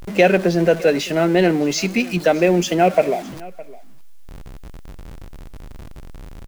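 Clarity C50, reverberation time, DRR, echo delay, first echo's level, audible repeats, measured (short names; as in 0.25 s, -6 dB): none, none, none, 0.611 s, -21.0 dB, 1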